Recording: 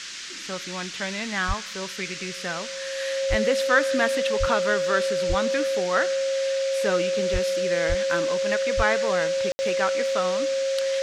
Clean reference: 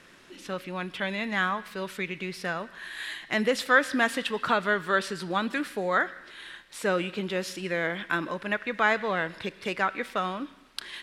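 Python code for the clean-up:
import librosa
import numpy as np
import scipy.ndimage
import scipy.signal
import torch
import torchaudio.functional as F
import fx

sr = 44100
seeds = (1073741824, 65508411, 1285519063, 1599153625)

y = fx.notch(x, sr, hz=540.0, q=30.0)
y = fx.fix_deplosive(y, sr, at_s=(1.47, 3.29, 4.39, 5.28, 7.32, 7.88, 8.76))
y = fx.fix_ambience(y, sr, seeds[0], print_start_s=0.0, print_end_s=0.5, start_s=9.52, end_s=9.59)
y = fx.noise_reduce(y, sr, print_start_s=0.0, print_end_s=0.5, reduce_db=13.0)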